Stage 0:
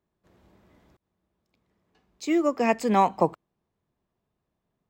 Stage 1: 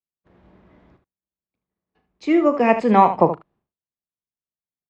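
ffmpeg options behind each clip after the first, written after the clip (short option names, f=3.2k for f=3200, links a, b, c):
-filter_complex "[0:a]agate=range=-33dB:threshold=-59dB:ratio=3:detection=peak,lowpass=2.7k,asplit=2[a][b];[b]aecho=0:1:37|75:0.237|0.282[c];[a][c]amix=inputs=2:normalize=0,volume=6.5dB"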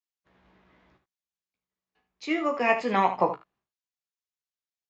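-filter_complex "[0:a]tiltshelf=f=850:g=-7,asplit=2[a][b];[b]adelay=16,volume=-5dB[c];[a][c]amix=inputs=2:normalize=0,aresample=16000,aresample=44100,volume=-7dB"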